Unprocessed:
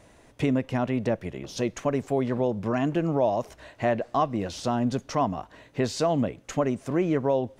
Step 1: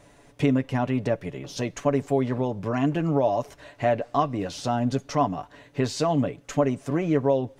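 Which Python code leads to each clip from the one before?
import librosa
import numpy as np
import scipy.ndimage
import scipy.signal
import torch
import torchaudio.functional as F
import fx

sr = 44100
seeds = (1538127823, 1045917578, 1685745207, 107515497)

y = x + 0.51 * np.pad(x, (int(7.0 * sr / 1000.0), 0))[:len(x)]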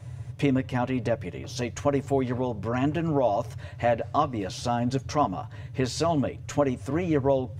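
y = fx.low_shelf(x, sr, hz=450.0, db=-3.0)
y = fx.dmg_noise_band(y, sr, seeds[0], low_hz=81.0, high_hz=140.0, level_db=-39.0)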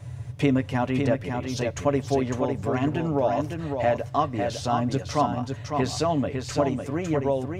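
y = fx.rider(x, sr, range_db=4, speed_s=2.0)
y = y + 10.0 ** (-5.5 / 20.0) * np.pad(y, (int(554 * sr / 1000.0), 0))[:len(y)]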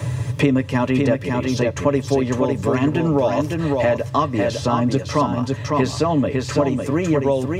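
y = fx.notch_comb(x, sr, f0_hz=740.0)
y = fx.band_squash(y, sr, depth_pct=70)
y = y * 10.0 ** (6.5 / 20.0)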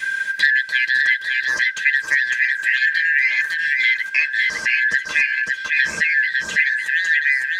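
y = fx.band_shuffle(x, sr, order='4123')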